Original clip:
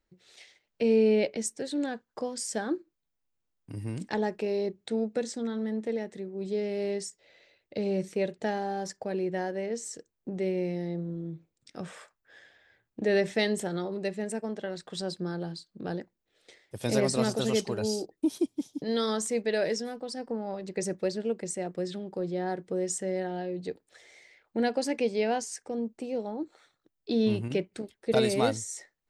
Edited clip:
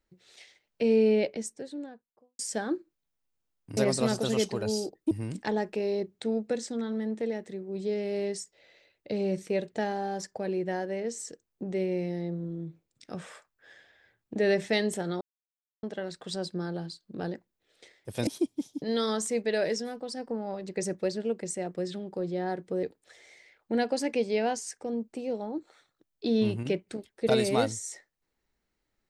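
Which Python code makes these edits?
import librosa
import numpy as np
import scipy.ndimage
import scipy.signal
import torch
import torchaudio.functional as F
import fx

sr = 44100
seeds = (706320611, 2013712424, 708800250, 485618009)

y = fx.studio_fade_out(x, sr, start_s=1.02, length_s=1.37)
y = fx.edit(y, sr, fx.silence(start_s=13.87, length_s=0.62),
    fx.move(start_s=16.93, length_s=1.34, to_s=3.77),
    fx.cut(start_s=22.83, length_s=0.85), tone=tone)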